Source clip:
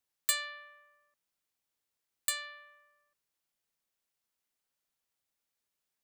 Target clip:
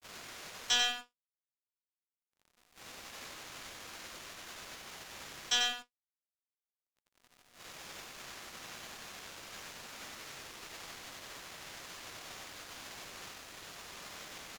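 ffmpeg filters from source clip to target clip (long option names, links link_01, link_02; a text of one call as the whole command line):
ffmpeg -i in.wav -filter_complex "[0:a]aeval=exprs='val(0)+0.5*0.0251*sgn(val(0))':channel_layout=same,asetrate=18257,aresample=44100,aresample=16000,volume=29dB,asoftclip=hard,volume=-29dB,aresample=44100,lowshelf=frequency=400:gain=-10.5,acrossover=split=110|2100[link_01][link_02][link_03];[link_02]alimiter=level_in=15.5dB:limit=-24dB:level=0:latency=1,volume=-15.5dB[link_04];[link_01][link_04][link_03]amix=inputs=3:normalize=0,agate=range=-33dB:threshold=-31dB:ratio=3:detection=peak,acrusher=bits=7:mix=0:aa=0.5,highshelf=frequency=4000:gain=-9,bandreject=frequency=880:width=28,aecho=1:1:93:0.562,volume=10.5dB" out.wav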